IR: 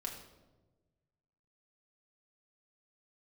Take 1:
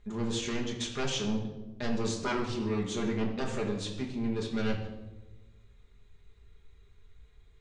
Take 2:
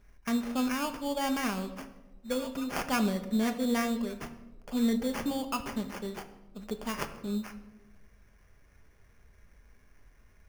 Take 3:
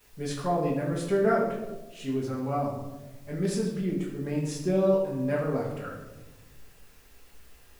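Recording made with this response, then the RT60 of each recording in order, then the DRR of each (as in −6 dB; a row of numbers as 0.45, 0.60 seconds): 1; 1.2, 1.2, 1.2 seconds; −1.5, 6.5, −11.0 decibels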